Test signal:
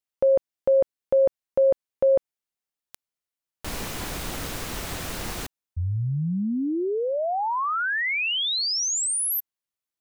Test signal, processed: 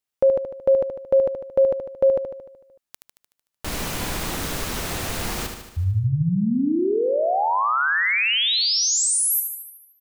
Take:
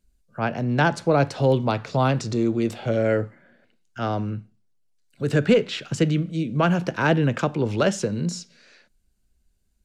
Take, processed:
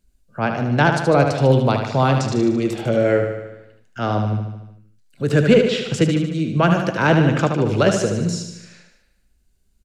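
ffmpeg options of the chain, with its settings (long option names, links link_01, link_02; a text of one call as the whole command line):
ffmpeg -i in.wav -af "aecho=1:1:75|150|225|300|375|450|525|600:0.473|0.279|0.165|0.0972|0.0573|0.0338|0.02|0.0118,volume=3.5dB" out.wav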